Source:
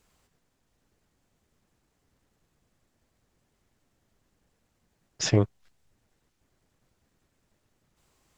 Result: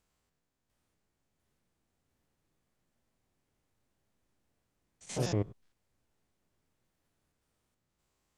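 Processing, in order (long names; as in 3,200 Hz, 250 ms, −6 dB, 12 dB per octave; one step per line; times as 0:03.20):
spectrum averaged block by block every 100 ms
delay with pitch and tempo change per echo 698 ms, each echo +3 semitones, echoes 3
level −9 dB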